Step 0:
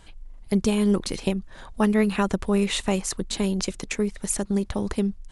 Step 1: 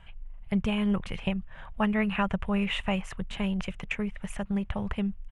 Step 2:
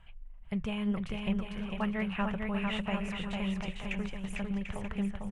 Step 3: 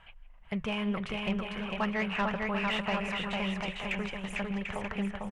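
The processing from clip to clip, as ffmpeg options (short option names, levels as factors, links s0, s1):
-af "firequalizer=gain_entry='entry(160,0);entry(300,-16);entry(620,-3);entry(2900,1);entry(4200,-21)':delay=0.05:min_phase=1"
-filter_complex "[0:a]flanger=delay=0.7:depth=6.1:regen=84:speed=0.75:shape=triangular,asplit=2[s0][s1];[s1]aecho=0:1:450|742.5|932.6|1056|1137:0.631|0.398|0.251|0.158|0.1[s2];[s0][s2]amix=inputs=2:normalize=0,volume=0.794"
-filter_complex "[0:a]asplit=2[s0][s1];[s1]adelay=160,highpass=300,lowpass=3400,asoftclip=type=hard:threshold=0.0335,volume=0.141[s2];[s0][s2]amix=inputs=2:normalize=0,asplit=2[s3][s4];[s4]highpass=f=720:p=1,volume=5.62,asoftclip=type=tanh:threshold=0.1[s5];[s3][s5]amix=inputs=2:normalize=0,lowpass=f=2800:p=1,volume=0.501"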